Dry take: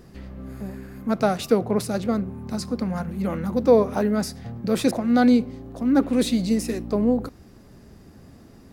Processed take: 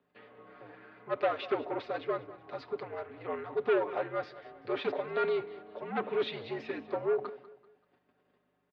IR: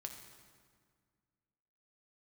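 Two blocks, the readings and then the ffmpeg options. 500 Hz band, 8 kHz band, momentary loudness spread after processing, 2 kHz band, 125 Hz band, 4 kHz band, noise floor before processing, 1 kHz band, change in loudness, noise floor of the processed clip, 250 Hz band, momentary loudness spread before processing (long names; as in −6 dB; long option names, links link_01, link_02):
−8.0 dB, below −35 dB, 16 LU, −5.0 dB, −21.0 dB, −10.0 dB, −49 dBFS, −7.0 dB, −11.5 dB, −76 dBFS, −22.0 dB, 17 LU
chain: -af "agate=range=-15dB:threshold=-44dB:ratio=16:detection=peak,aecho=1:1:6.1:0.79,dynaudnorm=framelen=490:gausssize=5:maxgain=3dB,asoftclip=type=tanh:threshold=-15.5dB,aeval=exprs='val(0)+0.00631*(sin(2*PI*50*n/s)+sin(2*PI*2*50*n/s)/2+sin(2*PI*3*50*n/s)/3+sin(2*PI*4*50*n/s)/4+sin(2*PI*5*50*n/s)/5)':channel_layout=same,afreqshift=16,aecho=1:1:193|386|579:0.141|0.0523|0.0193,highpass=frequency=450:width_type=q:width=0.5412,highpass=frequency=450:width_type=q:width=1.307,lowpass=frequency=3500:width_type=q:width=0.5176,lowpass=frequency=3500:width_type=q:width=0.7071,lowpass=frequency=3500:width_type=q:width=1.932,afreqshift=-92,volume=-6dB"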